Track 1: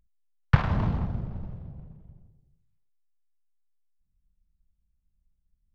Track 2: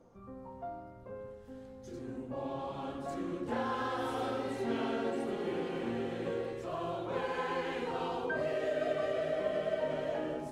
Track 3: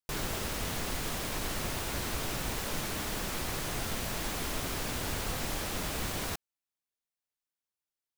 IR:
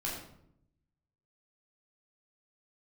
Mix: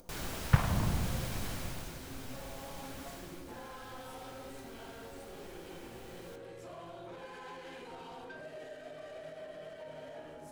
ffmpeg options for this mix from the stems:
-filter_complex "[0:a]volume=-5.5dB[link_01];[1:a]alimiter=level_in=7dB:limit=-24dB:level=0:latency=1:release=149,volume=-7dB,asoftclip=type=tanh:threshold=-37dB,crystalizer=i=2:c=0,volume=-8.5dB,asplit=2[link_02][link_03];[link_03]volume=-6.5dB[link_04];[2:a]acompressor=mode=upward:threshold=-59dB:ratio=2.5,volume=-8dB,afade=type=out:start_time=1.45:duration=0.51:silence=0.421697,afade=type=out:start_time=3.13:duration=0.32:silence=0.421697,asplit=2[link_05][link_06];[link_06]volume=-9.5dB[link_07];[3:a]atrim=start_sample=2205[link_08];[link_04][link_07]amix=inputs=2:normalize=0[link_09];[link_09][link_08]afir=irnorm=-1:irlink=0[link_10];[link_01][link_02][link_05][link_10]amix=inputs=4:normalize=0,acompressor=mode=upward:threshold=-51dB:ratio=2.5"

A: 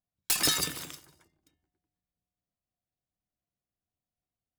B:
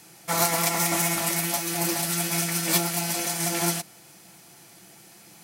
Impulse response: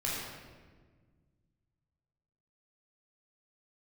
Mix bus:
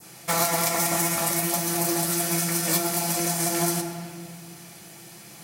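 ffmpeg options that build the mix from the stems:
-filter_complex "[0:a]aeval=exprs='val(0)*pow(10,-27*if(lt(mod(3.5*n/s,1),2*abs(3.5)/1000),1-mod(3.5*n/s,1)/(2*abs(3.5)/1000),(mod(3.5*n/s,1)-2*abs(3.5)/1000)/(1-2*abs(3.5)/1000))/20)':channel_layout=same,volume=-3dB[link_01];[1:a]volume=2.5dB,asplit=2[link_02][link_03];[link_03]volume=-9.5dB[link_04];[2:a]atrim=start_sample=2205[link_05];[link_04][link_05]afir=irnorm=-1:irlink=0[link_06];[link_01][link_02][link_06]amix=inputs=3:normalize=0,adynamicequalizer=threshold=0.0112:dfrequency=2800:dqfactor=0.89:tfrequency=2800:tqfactor=0.89:attack=5:release=100:ratio=0.375:range=3:mode=cutabove:tftype=bell,acompressor=threshold=-23dB:ratio=2"

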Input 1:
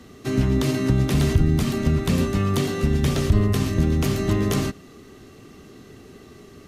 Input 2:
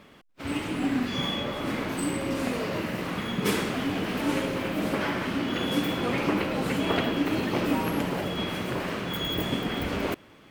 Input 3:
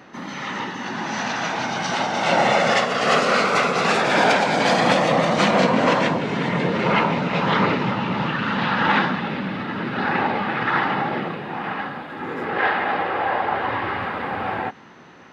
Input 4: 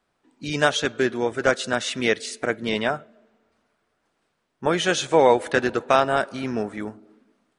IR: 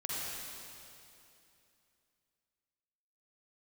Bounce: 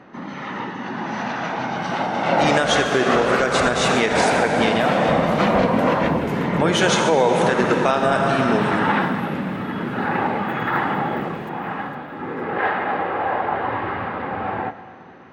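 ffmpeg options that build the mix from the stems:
-filter_complex "[0:a]adelay=2250,volume=-15dB[link_01];[1:a]adelay=1350,volume=-14dB,asplit=2[link_02][link_03];[link_03]volume=-8dB[link_04];[2:a]lowpass=frequency=1400:poles=1,volume=0.5dB,asplit=2[link_05][link_06];[link_06]volume=-15.5dB[link_07];[3:a]adelay=1950,volume=2.5dB,asplit=2[link_08][link_09];[link_09]volume=-5dB[link_10];[4:a]atrim=start_sample=2205[link_11];[link_07][link_10]amix=inputs=2:normalize=0[link_12];[link_12][link_11]afir=irnorm=-1:irlink=0[link_13];[link_04]aecho=0:1:458|916|1374|1832|2290|2748|3206:1|0.47|0.221|0.104|0.0488|0.0229|0.0108[link_14];[link_01][link_02][link_05][link_08][link_13][link_14]amix=inputs=6:normalize=0,alimiter=limit=-7dB:level=0:latency=1:release=148"

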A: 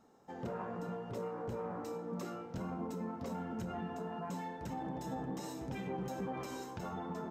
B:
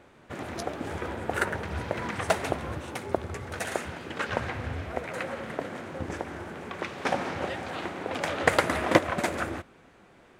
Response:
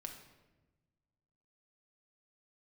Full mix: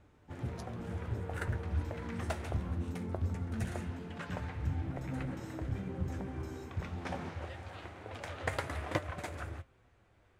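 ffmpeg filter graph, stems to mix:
-filter_complex "[0:a]lowshelf=frequency=430:width_type=q:width=1.5:gain=8.5,volume=-4.5dB[link_01];[1:a]volume=-9dB[link_02];[link_01][link_02]amix=inputs=2:normalize=0,lowshelf=frequency=130:width_type=q:width=1.5:gain=12,flanger=delay=6.6:depth=6.4:regen=70:speed=0.22:shape=sinusoidal"

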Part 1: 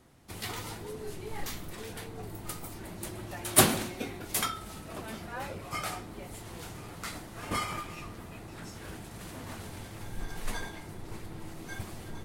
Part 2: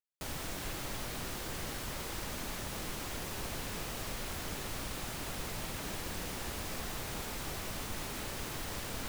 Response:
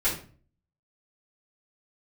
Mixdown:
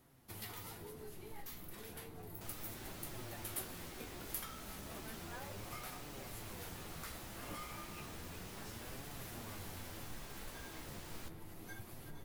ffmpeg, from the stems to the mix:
-filter_complex "[0:a]acompressor=threshold=-39dB:ratio=6,aexciter=amount=2.9:drive=6.7:freq=11000,volume=-3dB[link_01];[1:a]adelay=2200,volume=-7.5dB[link_02];[link_01][link_02]amix=inputs=2:normalize=0,flanger=delay=6.7:depth=9.9:regen=54:speed=0.33:shape=triangular"

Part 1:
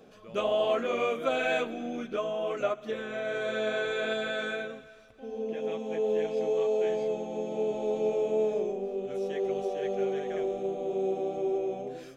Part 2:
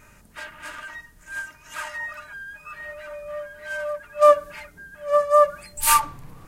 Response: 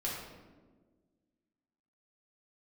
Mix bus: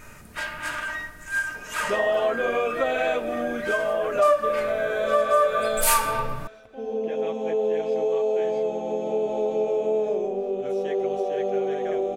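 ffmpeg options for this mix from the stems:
-filter_complex "[0:a]equalizer=frequency=720:width_type=o:width=2.1:gain=6,adelay=1550,volume=3dB[link_01];[1:a]volume=2dB,asplit=2[link_02][link_03];[link_03]volume=-3dB[link_04];[2:a]atrim=start_sample=2205[link_05];[link_04][link_05]afir=irnorm=-1:irlink=0[link_06];[link_01][link_02][link_06]amix=inputs=3:normalize=0,acompressor=threshold=-23dB:ratio=2"

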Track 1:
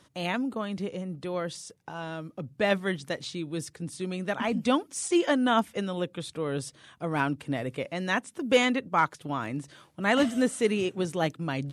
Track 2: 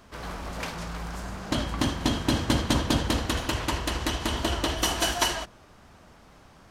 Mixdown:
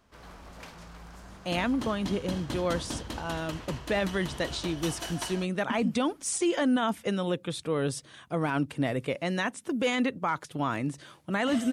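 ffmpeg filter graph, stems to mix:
ffmpeg -i stem1.wav -i stem2.wav -filter_complex "[0:a]alimiter=limit=-21dB:level=0:latency=1:release=31,adelay=1300,volume=2.5dB[link_01];[1:a]volume=-12dB[link_02];[link_01][link_02]amix=inputs=2:normalize=0" out.wav

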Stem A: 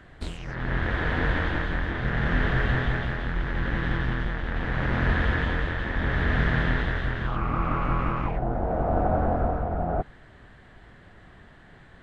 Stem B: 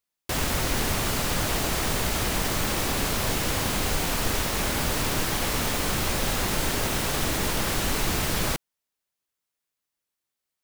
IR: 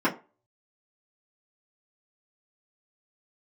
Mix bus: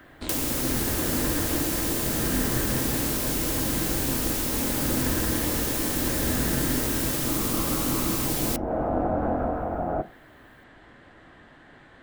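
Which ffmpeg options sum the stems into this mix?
-filter_complex "[0:a]volume=1dB,asplit=2[link_01][link_02];[link_02]volume=-23.5dB[link_03];[1:a]crystalizer=i=2.5:c=0,volume=0.5dB,asplit=2[link_04][link_05];[link_05]volume=-22dB[link_06];[2:a]atrim=start_sample=2205[link_07];[link_03][link_06]amix=inputs=2:normalize=0[link_08];[link_08][link_07]afir=irnorm=-1:irlink=0[link_09];[link_01][link_04][link_09]amix=inputs=3:normalize=0,lowshelf=frequency=120:gain=-10,acrossover=split=470[link_10][link_11];[link_11]acompressor=threshold=-27dB:ratio=6[link_12];[link_10][link_12]amix=inputs=2:normalize=0"

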